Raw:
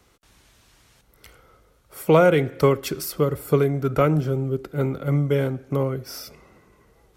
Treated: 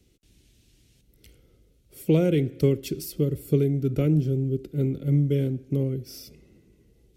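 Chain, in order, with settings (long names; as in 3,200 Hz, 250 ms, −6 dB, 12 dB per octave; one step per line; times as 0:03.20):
drawn EQ curve 340 Hz 0 dB, 1,100 Hz −27 dB, 2,700 Hz −6 dB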